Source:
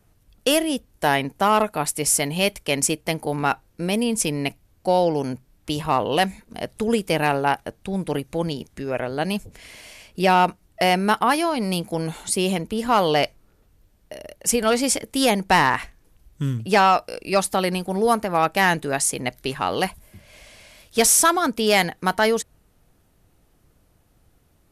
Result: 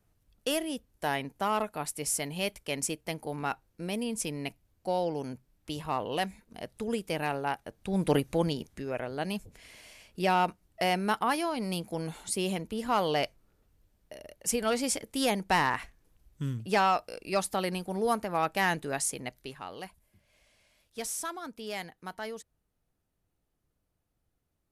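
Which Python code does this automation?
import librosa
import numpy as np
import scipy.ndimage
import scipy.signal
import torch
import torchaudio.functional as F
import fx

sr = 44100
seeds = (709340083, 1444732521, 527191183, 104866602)

y = fx.gain(x, sr, db=fx.line((7.68, -11.0), (8.09, 0.5), (8.99, -9.0), (19.06, -9.0), (19.75, -19.5)))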